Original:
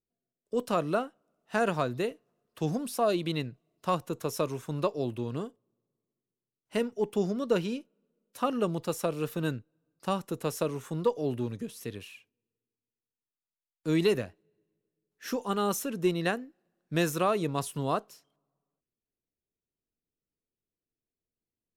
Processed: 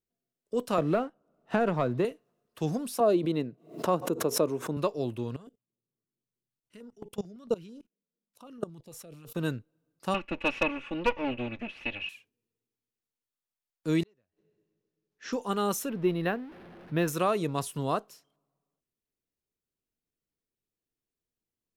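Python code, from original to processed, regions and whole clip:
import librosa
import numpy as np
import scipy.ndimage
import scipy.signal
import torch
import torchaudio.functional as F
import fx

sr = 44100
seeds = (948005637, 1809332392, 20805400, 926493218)

y = fx.chain(x, sr, fx.lowpass(hz=1100.0, slope=6),
    fx.leveller(passes=1),
    fx.band_squash(depth_pct=70), at=(0.78, 2.05))
y = fx.chain(y, sr, fx.highpass(hz=260.0, slope=12),
    fx.tilt_shelf(db=8.5, hz=910.0),
    fx.pre_swell(db_per_s=140.0), at=(3.0, 4.77))
y = fx.chain(y, sr, fx.low_shelf(hz=220.0, db=4.5),
    fx.level_steps(step_db=23),
    fx.filter_held_notch(hz=9.0, low_hz=320.0, high_hz=2400.0), at=(5.36, 9.35))
y = fx.chain(y, sr, fx.lower_of_two(delay_ms=3.5),
    fx.lowpass_res(hz=2600.0, q=9.9),
    fx.overload_stage(gain_db=17.0), at=(10.14, 12.09))
y = fx.chain(y, sr, fx.high_shelf(hz=10000.0, db=-11.5),
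    fx.gate_flip(shuts_db=-28.0, range_db=-41),
    fx.resample_bad(factor=3, down='none', up='filtered'), at=(14.03, 15.33))
y = fx.chain(y, sr, fx.zero_step(step_db=-42.5),
    fx.air_absorb(metres=220.0),
    fx.resample_linear(factor=3), at=(15.89, 17.08))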